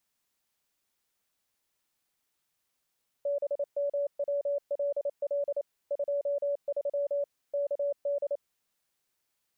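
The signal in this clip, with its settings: Morse "BMWLL 23 KD" 28 wpm 570 Hz -26.5 dBFS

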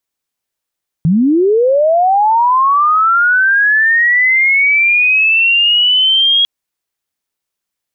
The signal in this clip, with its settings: chirp linear 150 Hz -> 3300 Hz -7.5 dBFS -> -7.5 dBFS 5.40 s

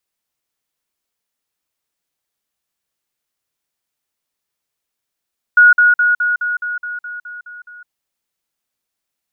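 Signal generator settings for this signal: level ladder 1450 Hz -4 dBFS, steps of -3 dB, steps 11, 0.16 s 0.05 s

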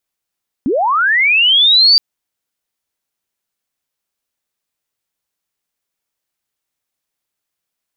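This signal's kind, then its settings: chirp linear 220 Hz -> 4700 Hz -12 dBFS -> -5 dBFS 1.32 s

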